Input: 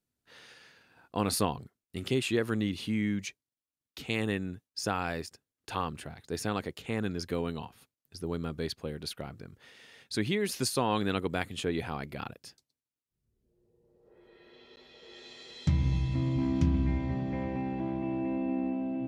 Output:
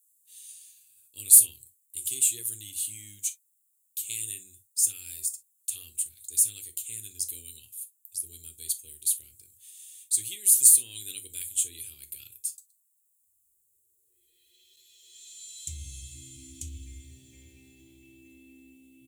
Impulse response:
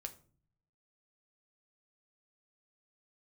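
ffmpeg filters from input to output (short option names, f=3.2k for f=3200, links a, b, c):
-filter_complex "[0:a]firequalizer=gain_entry='entry(100,0);entry(150,-19);entry(350,-7);entry(680,-28);entry(990,-30);entry(2400,6);entry(5000,-11);entry(7500,14)':delay=0.05:min_phase=1,aexciter=amount=7.9:drive=8.8:freq=3.6k[a];[1:a]atrim=start_sample=2205,atrim=end_sample=3087[b];[a][b]afir=irnorm=-1:irlink=0,volume=-11dB"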